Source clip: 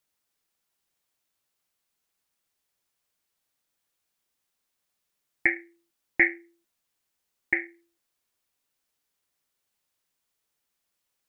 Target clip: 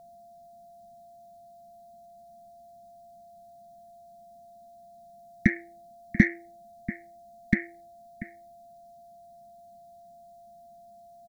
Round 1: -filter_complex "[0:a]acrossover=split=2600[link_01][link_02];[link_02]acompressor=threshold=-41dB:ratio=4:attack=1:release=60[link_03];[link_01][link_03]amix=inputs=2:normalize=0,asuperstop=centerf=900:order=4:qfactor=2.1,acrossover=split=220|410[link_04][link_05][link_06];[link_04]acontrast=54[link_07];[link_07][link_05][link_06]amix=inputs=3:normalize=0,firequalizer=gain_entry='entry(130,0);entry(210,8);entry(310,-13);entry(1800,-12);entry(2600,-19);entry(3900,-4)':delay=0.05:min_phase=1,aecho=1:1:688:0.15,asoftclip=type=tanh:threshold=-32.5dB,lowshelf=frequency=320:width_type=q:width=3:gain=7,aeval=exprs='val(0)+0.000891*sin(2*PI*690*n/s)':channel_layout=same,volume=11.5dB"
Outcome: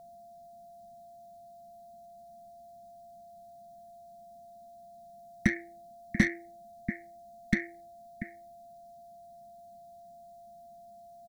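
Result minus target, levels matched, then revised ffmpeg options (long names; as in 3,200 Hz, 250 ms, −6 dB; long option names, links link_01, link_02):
soft clipping: distortion +12 dB
-filter_complex "[0:a]acrossover=split=2600[link_01][link_02];[link_02]acompressor=threshold=-41dB:ratio=4:attack=1:release=60[link_03];[link_01][link_03]amix=inputs=2:normalize=0,asuperstop=centerf=900:order=4:qfactor=2.1,acrossover=split=220|410[link_04][link_05][link_06];[link_04]acontrast=54[link_07];[link_07][link_05][link_06]amix=inputs=3:normalize=0,firequalizer=gain_entry='entry(130,0);entry(210,8);entry(310,-13);entry(1800,-12);entry(2600,-19);entry(3900,-4)':delay=0.05:min_phase=1,aecho=1:1:688:0.15,asoftclip=type=tanh:threshold=-22.5dB,lowshelf=frequency=320:width_type=q:width=3:gain=7,aeval=exprs='val(0)+0.000891*sin(2*PI*690*n/s)':channel_layout=same,volume=11.5dB"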